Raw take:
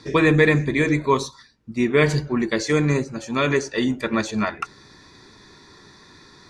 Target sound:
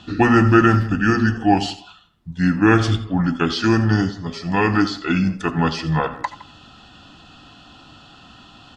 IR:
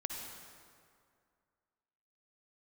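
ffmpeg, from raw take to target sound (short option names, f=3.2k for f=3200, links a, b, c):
-filter_complex "[0:a]asplit=2[a][b];[b]adelay=120,highpass=300,lowpass=3.4k,asoftclip=type=hard:threshold=-13.5dB,volume=-18dB[c];[a][c]amix=inputs=2:normalize=0,asplit=2[d][e];[1:a]atrim=start_sample=2205,atrim=end_sample=3087,highshelf=f=7.2k:g=10.5[f];[e][f]afir=irnorm=-1:irlink=0,volume=-1dB[g];[d][g]amix=inputs=2:normalize=0,asetrate=32667,aresample=44100,volume=-2dB"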